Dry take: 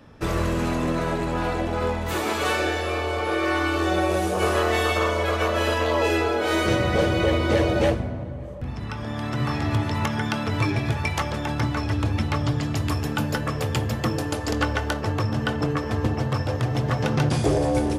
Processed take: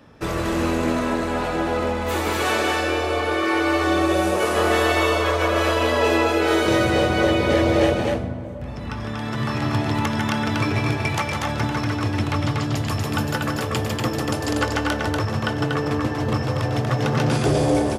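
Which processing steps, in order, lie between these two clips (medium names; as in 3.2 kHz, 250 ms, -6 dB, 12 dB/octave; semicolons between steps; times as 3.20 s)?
bass shelf 95 Hz -7 dB; loudspeakers at several distances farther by 53 m -7 dB, 82 m -3 dB; trim +1 dB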